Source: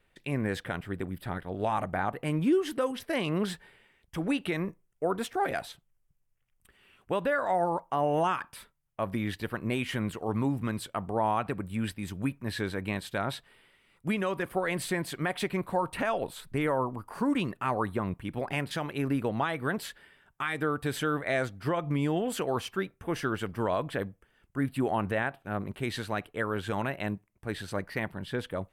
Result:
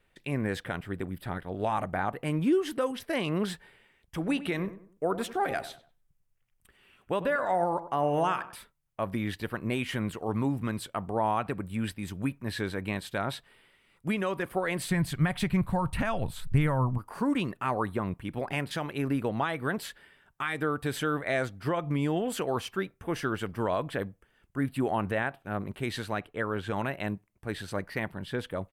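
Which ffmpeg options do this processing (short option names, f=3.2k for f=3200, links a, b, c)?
-filter_complex "[0:a]asplit=3[a][b][c];[a]afade=t=out:st=4.27:d=0.02[d];[b]asplit=2[e][f];[f]adelay=96,lowpass=f=1.8k:p=1,volume=-13dB,asplit=2[g][h];[h]adelay=96,lowpass=f=1.8k:p=1,volume=0.35,asplit=2[i][j];[j]adelay=96,lowpass=f=1.8k:p=1,volume=0.35[k];[e][g][i][k]amix=inputs=4:normalize=0,afade=t=in:st=4.27:d=0.02,afade=t=out:st=8.55:d=0.02[l];[c]afade=t=in:st=8.55:d=0.02[m];[d][l][m]amix=inputs=3:normalize=0,asplit=3[n][o][p];[n]afade=t=out:st=14.9:d=0.02[q];[o]asubboost=boost=10:cutoff=120,afade=t=in:st=14.9:d=0.02,afade=t=out:st=16.97:d=0.02[r];[p]afade=t=in:st=16.97:d=0.02[s];[q][r][s]amix=inputs=3:normalize=0,asettb=1/sr,asplit=3[t][u][v];[t]atrim=end=26.174[w];[u]atrim=start=26.17:end=26.76,asetpts=PTS-STARTPTS,afade=t=in:d=0.004:c=qsin,afade=t=out:st=0.586:d=0.004:c=qsin,highshelf=f=5.3k:g=-7.5[x];[v]atrim=start=26.756[y];[w][x]acrossfade=d=0.004:c1=hsin:c2=qsin[z];[z][y]acrossfade=d=0.004:c1=qsin:c2=hsin"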